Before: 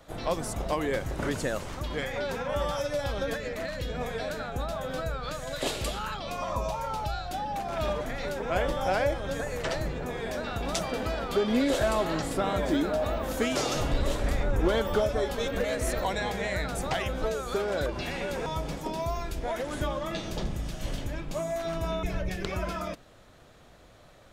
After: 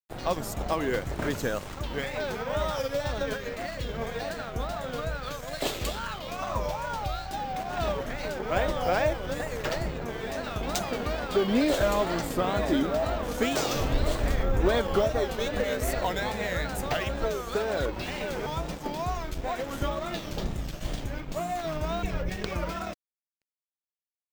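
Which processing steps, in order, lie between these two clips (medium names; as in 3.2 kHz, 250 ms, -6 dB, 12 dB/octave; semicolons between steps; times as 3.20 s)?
crossover distortion -43.5 dBFS; careless resampling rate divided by 2×, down filtered, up hold; wow and flutter 130 cents; trim +2 dB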